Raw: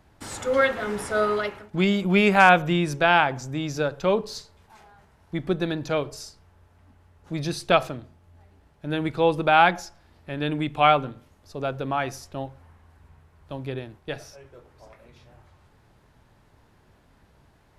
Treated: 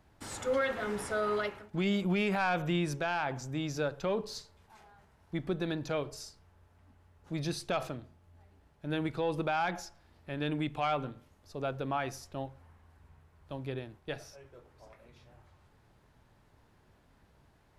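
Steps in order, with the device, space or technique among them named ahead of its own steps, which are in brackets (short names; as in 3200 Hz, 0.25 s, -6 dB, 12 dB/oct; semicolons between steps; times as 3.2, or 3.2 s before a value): soft clipper into limiter (soft clip -8.5 dBFS, distortion -17 dB; limiter -16.5 dBFS, peak gain reduction 7.5 dB); gain -6 dB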